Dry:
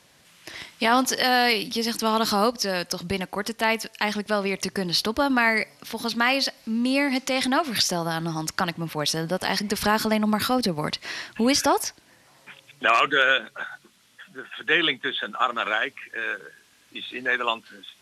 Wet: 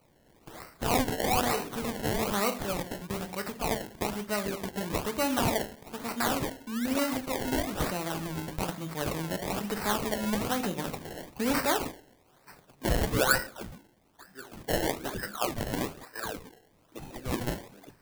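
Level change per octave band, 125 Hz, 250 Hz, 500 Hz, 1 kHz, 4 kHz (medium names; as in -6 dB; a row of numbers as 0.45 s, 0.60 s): -0.5 dB, -6.0 dB, -5.0 dB, -8.0 dB, -11.5 dB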